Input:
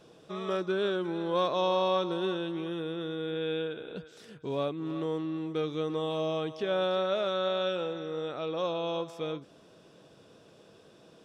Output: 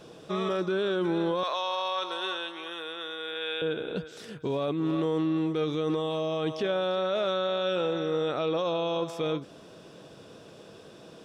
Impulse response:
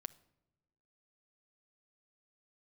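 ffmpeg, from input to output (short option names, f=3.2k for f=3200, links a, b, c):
-filter_complex "[0:a]asettb=1/sr,asplit=3[a][b][c];[a]atrim=end=1.434[d];[b]atrim=start=1.43:end=3.62,asetpts=PTS-STARTPTS,afade=t=in:d=0.004:c=qsin,afade=t=out:st=2.186:d=0.004:c=qsin,highpass=930[e];[c]atrim=start=3.616[f];[d][e]acrossfade=d=0.004:c1=hsin:c2=qsin[g];[g][f]acrossfade=d=0.004:c1=qsin:c2=hsin,alimiter=level_in=4dB:limit=-24dB:level=0:latency=1:release=17,volume=-4dB,volume=7.5dB"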